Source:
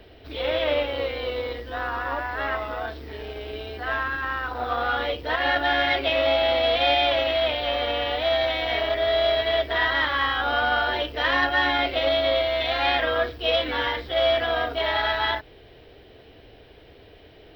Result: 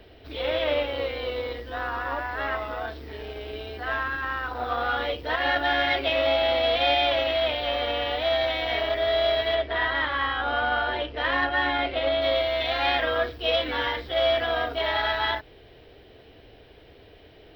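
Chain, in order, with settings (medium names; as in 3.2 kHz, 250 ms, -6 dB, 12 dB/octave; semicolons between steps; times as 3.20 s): 9.55–12.22 s: distance through air 160 m; trim -1.5 dB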